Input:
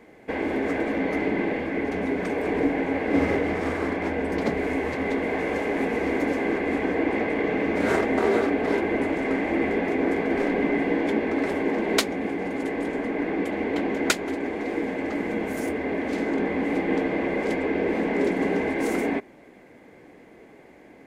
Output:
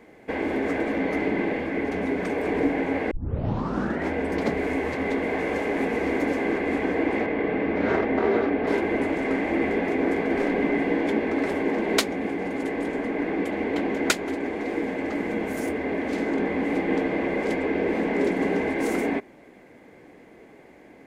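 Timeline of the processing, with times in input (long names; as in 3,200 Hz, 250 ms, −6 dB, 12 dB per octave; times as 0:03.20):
0:03.11: tape start 0.98 s
0:07.26–0:08.67: high-frequency loss of the air 200 metres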